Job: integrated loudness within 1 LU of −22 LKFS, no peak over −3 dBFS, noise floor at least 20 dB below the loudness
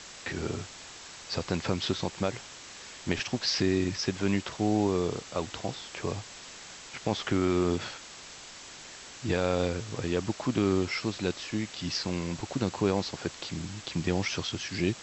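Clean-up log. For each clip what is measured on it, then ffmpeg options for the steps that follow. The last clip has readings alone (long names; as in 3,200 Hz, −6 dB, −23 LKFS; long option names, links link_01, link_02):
background noise floor −47 dBFS; target noise floor −51 dBFS; integrated loudness −31.0 LKFS; sample peak −10.0 dBFS; target loudness −22.0 LKFS
→ -af "afftdn=noise_reduction=6:noise_floor=-47"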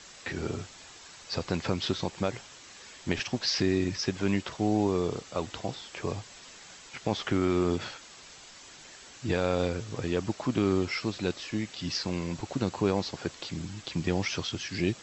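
background noise floor −50 dBFS; target noise floor −51 dBFS
→ -af "afftdn=noise_reduction=6:noise_floor=-50"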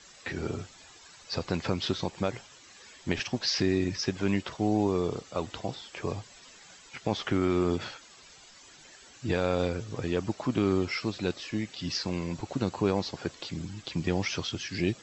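background noise floor −53 dBFS; integrated loudness −31.0 LKFS; sample peak −10.0 dBFS; target loudness −22.0 LKFS
→ -af "volume=9dB,alimiter=limit=-3dB:level=0:latency=1"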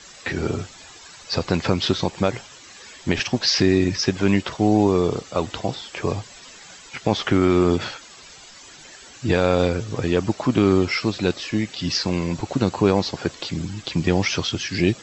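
integrated loudness −22.0 LKFS; sample peak −3.0 dBFS; background noise floor −44 dBFS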